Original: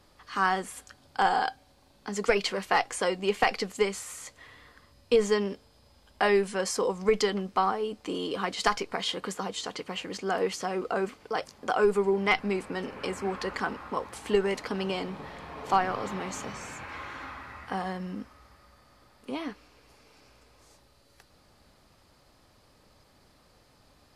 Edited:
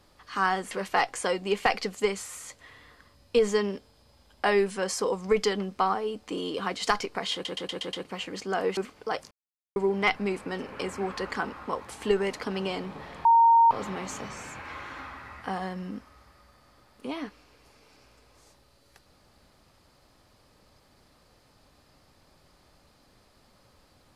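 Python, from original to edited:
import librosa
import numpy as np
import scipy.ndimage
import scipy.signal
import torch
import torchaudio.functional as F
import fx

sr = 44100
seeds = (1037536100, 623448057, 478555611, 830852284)

y = fx.edit(x, sr, fx.cut(start_s=0.71, length_s=1.77),
    fx.stutter_over(start_s=9.1, slice_s=0.12, count=6),
    fx.cut(start_s=10.54, length_s=0.47),
    fx.silence(start_s=11.55, length_s=0.45),
    fx.bleep(start_s=15.49, length_s=0.46, hz=923.0, db=-14.5), tone=tone)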